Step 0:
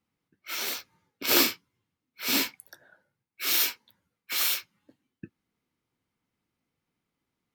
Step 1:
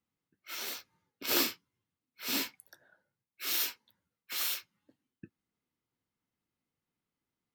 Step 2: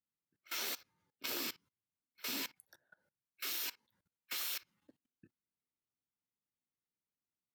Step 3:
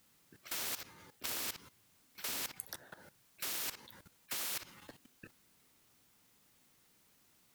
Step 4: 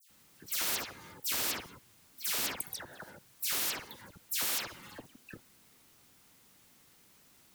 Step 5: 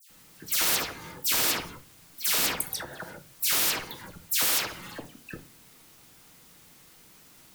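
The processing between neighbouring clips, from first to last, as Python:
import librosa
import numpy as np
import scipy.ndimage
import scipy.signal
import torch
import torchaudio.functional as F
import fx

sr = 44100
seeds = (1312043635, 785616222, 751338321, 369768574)

y1 = fx.notch(x, sr, hz=2300.0, q=23.0)
y1 = y1 * 10.0 ** (-7.0 / 20.0)
y2 = fx.level_steps(y1, sr, step_db=21)
y2 = y2 * 10.0 ** (3.0 / 20.0)
y3 = fx.spectral_comp(y2, sr, ratio=4.0)
y3 = y3 * 10.0 ** (3.0 / 20.0)
y4 = fx.dispersion(y3, sr, late='lows', ms=100.0, hz=2700.0)
y4 = y4 * 10.0 ** (6.5 / 20.0)
y5 = fx.room_shoebox(y4, sr, seeds[0], volume_m3=160.0, walls='furnished', distance_m=0.6)
y5 = y5 * 10.0 ** (7.5 / 20.0)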